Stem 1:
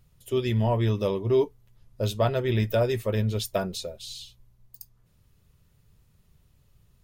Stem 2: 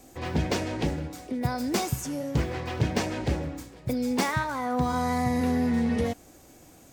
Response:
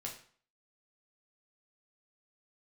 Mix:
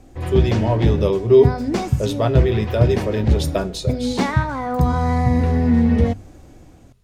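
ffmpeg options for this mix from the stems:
-filter_complex "[0:a]lowpass=11k,equalizer=f=400:t=o:w=0.23:g=7,volume=0.5dB,asplit=2[a][b];[b]volume=-7.5dB[c];[1:a]aemphasis=mode=reproduction:type=bsi,bandreject=f=50:t=h:w=6,bandreject=f=100:t=h:w=6,bandreject=f=150:t=h:w=6,bandreject=f=200:t=h:w=6,bandreject=f=250:t=h:w=6,volume=1dB[d];[2:a]atrim=start_sample=2205[e];[c][e]afir=irnorm=-1:irlink=0[f];[a][d][f]amix=inputs=3:normalize=0,dynaudnorm=f=120:g=9:m=4dB"

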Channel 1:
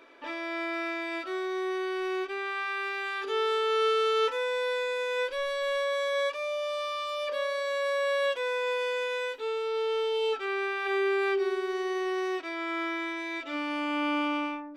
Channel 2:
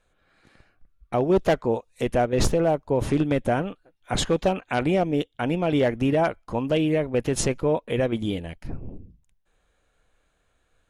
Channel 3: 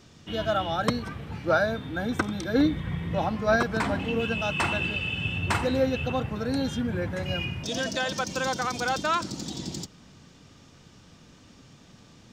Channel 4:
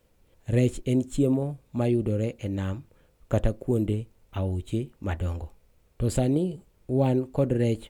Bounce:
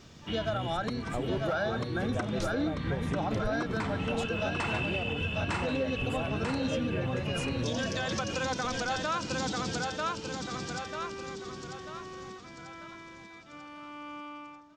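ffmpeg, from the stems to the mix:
-filter_complex "[0:a]equalizer=f=1.1k:w=4.4:g=8,volume=-16dB,asplit=2[a][b];[b]volume=-24dB[c];[1:a]volume=-10.5dB[d];[2:a]lowpass=f=8k:w=0.5412,lowpass=f=8k:w=1.3066,asoftclip=type=tanh:threshold=-11.5dB,volume=0.5dB,asplit=2[e][f];[f]volume=-5.5dB[g];[3:a]acrossover=split=130[h][i];[i]acompressor=threshold=-44dB:ratio=1.5[j];[h][j]amix=inputs=2:normalize=0,volume=-4dB[k];[c][g]amix=inputs=2:normalize=0,aecho=0:1:942|1884|2826|3768|4710|5652:1|0.43|0.185|0.0795|0.0342|0.0147[l];[a][d][e][k][l]amix=inputs=5:normalize=0,alimiter=limit=-22dB:level=0:latency=1:release=254"

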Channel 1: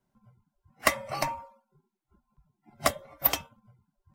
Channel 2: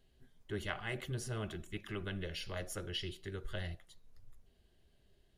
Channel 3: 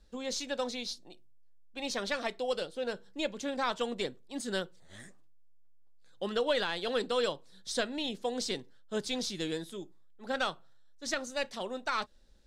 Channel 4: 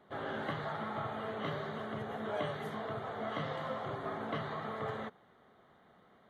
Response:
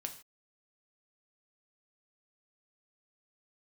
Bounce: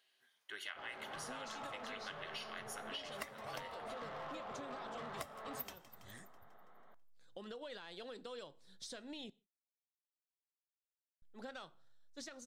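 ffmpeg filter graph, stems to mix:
-filter_complex "[0:a]adelay=2350,volume=-10.5dB,asplit=3[a][b][c];[b]volume=-10.5dB[d];[c]volume=-21dB[e];[1:a]highpass=1.3k,highshelf=f=4.9k:g=-6,bandreject=f=7.4k:w=12,volume=2.5dB,asplit=2[f][g];[g]volume=-3dB[h];[2:a]acompressor=threshold=-33dB:ratio=6,alimiter=level_in=8.5dB:limit=-24dB:level=0:latency=1:release=303,volume=-8.5dB,adelay=1150,volume=-6.5dB,asplit=3[i][j][k];[i]atrim=end=9.3,asetpts=PTS-STARTPTS,afade=t=out:st=9.296:d=0.004:c=hsin[l];[j]atrim=start=9.3:end=11.22,asetpts=PTS-STARTPTS,volume=0[m];[k]atrim=start=11.22,asetpts=PTS-STARTPTS,afade=t=in:d=0.004:c=hsin[n];[l][m][n]concat=n=3:v=0:a=1,asplit=2[o][p];[p]volume=-13dB[q];[3:a]equalizer=f=1k:w=0.48:g=12,asoftclip=type=tanh:threshold=-30dB,adelay=650,volume=-12.5dB,asplit=2[r][s];[s]volume=-8dB[t];[4:a]atrim=start_sample=2205[u];[d][h][q][t]amix=inputs=4:normalize=0[v];[v][u]afir=irnorm=-1:irlink=0[w];[e]aecho=0:1:164|328|492|656|820|984|1148|1312|1476:1|0.57|0.325|0.185|0.106|0.0602|0.0343|0.0195|0.0111[x];[a][f][o][r][w][x]amix=inputs=6:normalize=0,acompressor=threshold=-43dB:ratio=6"

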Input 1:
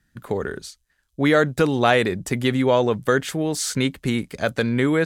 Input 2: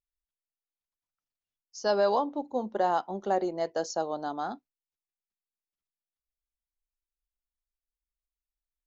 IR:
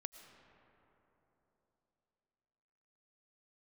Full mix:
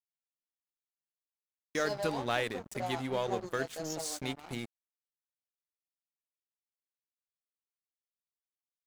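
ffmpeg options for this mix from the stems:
-filter_complex "[0:a]highshelf=f=2.6k:g=5,adelay=450,volume=-14dB[a];[1:a]aemphasis=mode=production:type=75fm,flanger=delay=15:depth=2:speed=0.36,equalizer=f=2.2k:t=o:w=0.96:g=-15,volume=-5dB,asplit=2[b][c];[c]apad=whole_len=242793[d];[a][d]sidechaingate=range=-33dB:threshold=-58dB:ratio=16:detection=peak[e];[e][b]amix=inputs=2:normalize=0,bandreject=f=50:t=h:w=6,bandreject=f=100:t=h:w=6,bandreject=f=150:t=h:w=6,bandreject=f=200:t=h:w=6,bandreject=f=250:t=h:w=6,aeval=exprs='sgn(val(0))*max(abs(val(0))-0.0075,0)':c=same"

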